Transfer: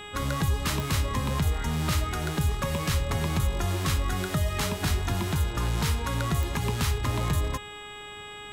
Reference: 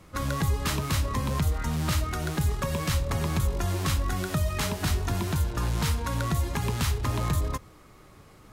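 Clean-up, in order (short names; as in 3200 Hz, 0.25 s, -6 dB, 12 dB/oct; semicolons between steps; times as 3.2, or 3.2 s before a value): de-click; de-hum 414.9 Hz, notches 9; notch 7800 Hz, Q 30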